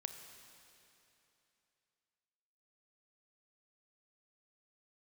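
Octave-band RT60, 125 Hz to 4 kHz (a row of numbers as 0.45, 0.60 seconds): 3.0, 3.0, 3.0, 3.0, 3.0, 2.9 seconds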